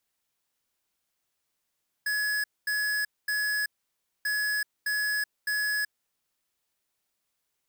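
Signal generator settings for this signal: beep pattern square 1.69 kHz, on 0.38 s, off 0.23 s, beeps 3, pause 0.59 s, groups 2, -28 dBFS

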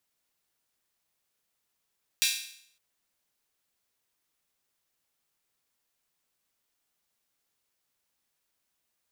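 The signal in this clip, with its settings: open hi-hat length 0.56 s, high-pass 2.9 kHz, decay 0.64 s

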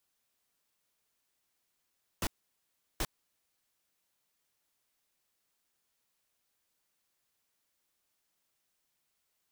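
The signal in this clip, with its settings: noise bursts pink, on 0.05 s, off 0.73 s, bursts 2, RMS -32 dBFS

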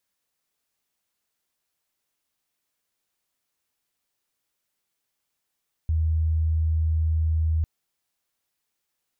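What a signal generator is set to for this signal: tone sine 79.7 Hz -19.5 dBFS 1.75 s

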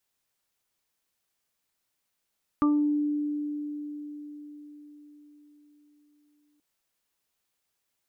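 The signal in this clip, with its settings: additive tone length 3.98 s, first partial 295 Hz, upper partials -18.5/-17/-4 dB, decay 5.00 s, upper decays 0.50/0.58/0.26 s, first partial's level -19 dB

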